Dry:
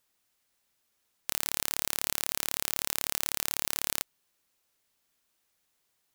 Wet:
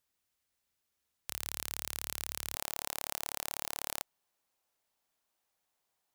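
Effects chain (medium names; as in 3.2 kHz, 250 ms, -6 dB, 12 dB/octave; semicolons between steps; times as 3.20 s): peaking EQ 69 Hz +8.5 dB 1.1 oct, from 2.55 s 780 Hz; trim -7.5 dB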